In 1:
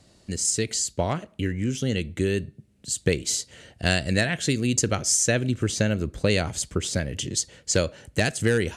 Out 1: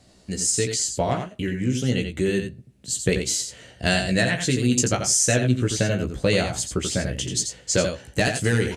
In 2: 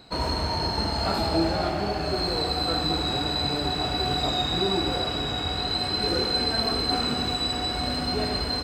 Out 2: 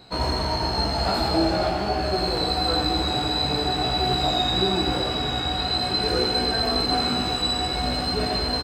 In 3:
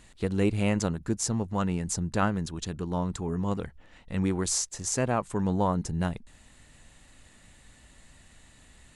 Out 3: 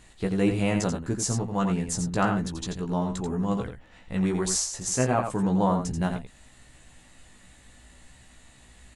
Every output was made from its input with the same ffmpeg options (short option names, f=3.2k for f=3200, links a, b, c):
-filter_complex "[0:a]equalizer=f=730:t=o:w=0.26:g=2.5,asplit=2[a][b];[b]adelay=16,volume=-4.5dB[c];[a][c]amix=inputs=2:normalize=0,asplit=2[d][e];[e]aecho=0:1:86:0.447[f];[d][f]amix=inputs=2:normalize=0"